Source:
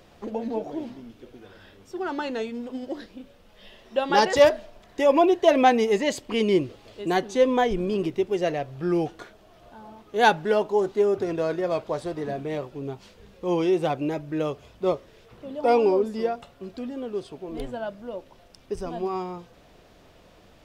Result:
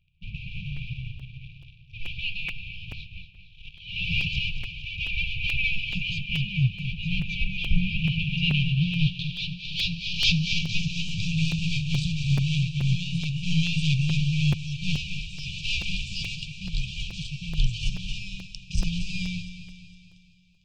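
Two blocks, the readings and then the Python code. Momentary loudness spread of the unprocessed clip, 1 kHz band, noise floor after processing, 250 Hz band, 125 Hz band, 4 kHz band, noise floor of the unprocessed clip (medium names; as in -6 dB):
17 LU, under -30 dB, -52 dBFS, -3.5 dB, +13.5 dB, +8.5 dB, -54 dBFS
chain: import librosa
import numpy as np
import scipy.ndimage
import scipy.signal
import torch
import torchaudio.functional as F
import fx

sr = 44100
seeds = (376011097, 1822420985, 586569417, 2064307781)

p1 = fx.leveller(x, sr, passes=5)
p2 = fx.echo_pitch(p1, sr, ms=137, semitones=1, count=3, db_per_echo=-6.0)
p3 = fx.air_absorb(p2, sr, metres=180.0)
p4 = p3 + fx.echo_feedback(p3, sr, ms=230, feedback_pct=54, wet_db=-11.0, dry=0)
p5 = fx.filter_sweep_lowpass(p4, sr, from_hz=1900.0, to_hz=8000.0, start_s=7.6, end_s=11.39, q=2.0)
p6 = fx.brickwall_bandstop(p5, sr, low_hz=170.0, high_hz=2300.0)
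y = fx.buffer_crackle(p6, sr, first_s=0.76, period_s=0.43, block=256, kind='repeat')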